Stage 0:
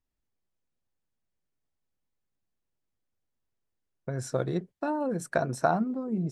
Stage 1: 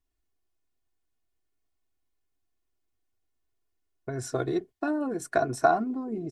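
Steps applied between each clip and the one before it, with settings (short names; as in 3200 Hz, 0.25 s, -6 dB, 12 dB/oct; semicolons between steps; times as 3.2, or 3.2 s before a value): comb 2.8 ms, depth 76%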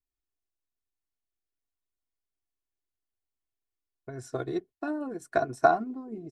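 upward expander 1.5:1, over -43 dBFS; gain +1.5 dB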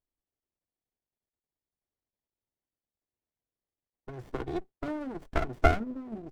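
running maximum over 33 samples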